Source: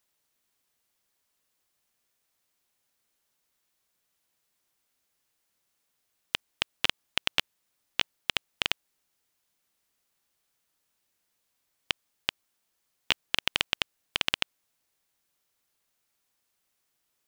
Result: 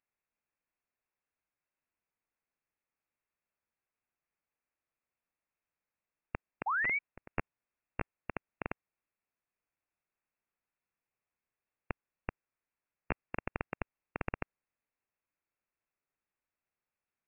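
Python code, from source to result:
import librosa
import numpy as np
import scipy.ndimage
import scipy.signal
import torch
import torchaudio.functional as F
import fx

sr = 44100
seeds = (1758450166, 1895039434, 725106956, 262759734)

y = fx.spec_paint(x, sr, seeds[0], shape='fall', start_s=6.66, length_s=0.33, low_hz=390.0, high_hz=2000.0, level_db=-27.0)
y = fx.overflow_wrap(y, sr, gain_db=14.0, at=(6.7, 7.36))
y = fx.freq_invert(y, sr, carrier_hz=2700)
y = fx.upward_expand(y, sr, threshold_db=-38.0, expansion=1.5)
y = F.gain(torch.from_numpy(y), -4.0).numpy()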